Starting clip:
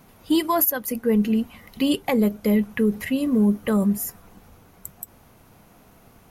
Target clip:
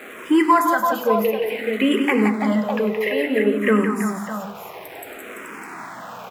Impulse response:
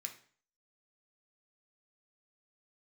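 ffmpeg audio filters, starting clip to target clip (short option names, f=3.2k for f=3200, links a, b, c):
-filter_complex "[0:a]aeval=exprs='val(0)+0.5*0.0178*sgn(val(0))':c=same,highpass=74,acrossover=split=320 2600:gain=0.141 1 0.112[a][b][c];[a][b][c]amix=inputs=3:normalize=0,aecho=1:1:99|173|336|605:0.266|0.501|0.422|0.376,asplit=2[d][e];[1:a]atrim=start_sample=2205[f];[e][f]afir=irnorm=-1:irlink=0,volume=4.5dB[g];[d][g]amix=inputs=2:normalize=0,asplit=2[h][i];[i]afreqshift=-0.58[j];[h][j]amix=inputs=2:normalize=1,volume=6dB"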